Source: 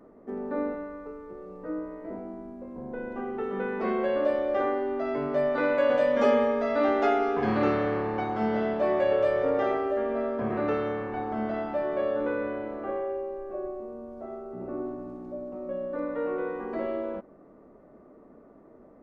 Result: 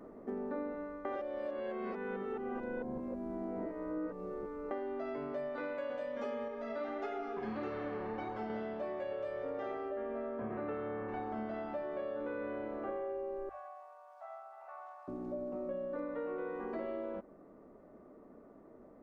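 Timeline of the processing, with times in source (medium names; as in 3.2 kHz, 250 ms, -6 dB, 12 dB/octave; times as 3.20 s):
1.05–4.71 s: reverse
6.48–8.50 s: flange 1.6 Hz, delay 1.7 ms, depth 3.8 ms, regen +45%
9.89–11.07 s: low-pass 3.4 kHz -> 2 kHz
13.49–15.08 s: steep high-pass 720 Hz 48 dB/octave
whole clip: gain riding; hum notches 50/100/150 Hz; compression 3:1, threshold -30 dBFS; trim -7 dB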